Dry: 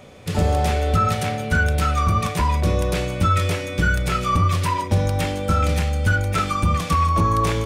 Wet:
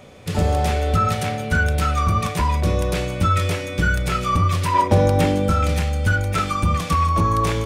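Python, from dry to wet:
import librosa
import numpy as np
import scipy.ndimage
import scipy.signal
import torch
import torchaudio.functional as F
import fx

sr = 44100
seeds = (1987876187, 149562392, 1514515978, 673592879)

y = fx.peak_eq(x, sr, hz=fx.line((4.73, 960.0), (5.48, 180.0)), db=9.0, octaves=2.9, at=(4.73, 5.48), fade=0.02)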